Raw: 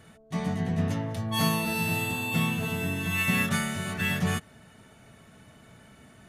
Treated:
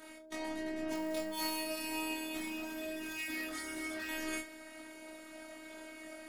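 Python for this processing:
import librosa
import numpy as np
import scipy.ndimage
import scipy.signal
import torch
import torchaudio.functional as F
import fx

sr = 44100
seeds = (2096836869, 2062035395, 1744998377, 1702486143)

p1 = scipy.signal.sosfilt(scipy.signal.butter(4, 210.0, 'highpass', fs=sr, output='sos'), x)
p2 = fx.notch(p1, sr, hz=2900.0, q=27.0)
p3 = fx.over_compress(p2, sr, threshold_db=-41.0, ratio=-1.0)
p4 = p2 + F.gain(torch.from_numpy(p3), 2.0).numpy()
p5 = fx.chorus_voices(p4, sr, voices=6, hz=0.36, base_ms=20, depth_ms=1.4, mix_pct=50)
p6 = fx.quant_float(p5, sr, bits=2, at=(0.92, 1.65))
p7 = fx.robotise(p6, sr, hz=314.0)
p8 = fx.clip_hard(p7, sr, threshold_db=-31.0, at=(2.37, 4.09))
p9 = p8 + fx.room_early_taps(p8, sr, ms=(29, 68), db=(-6.5, -16.5), dry=0)
y = F.gain(torch.from_numpy(p9), -3.5).numpy()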